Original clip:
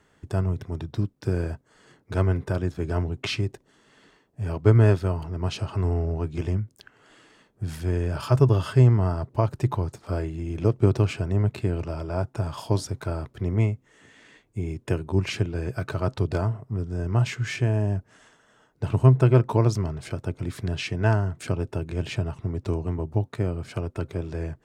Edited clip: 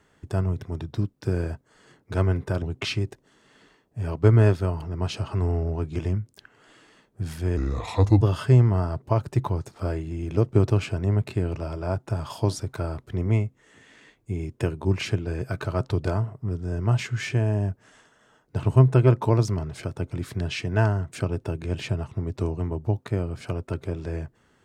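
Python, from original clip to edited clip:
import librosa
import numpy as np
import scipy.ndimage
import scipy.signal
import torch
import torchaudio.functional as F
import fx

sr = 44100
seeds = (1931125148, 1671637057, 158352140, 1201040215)

y = fx.edit(x, sr, fx.cut(start_s=2.62, length_s=0.42),
    fx.speed_span(start_s=7.99, length_s=0.49, speed=0.77), tone=tone)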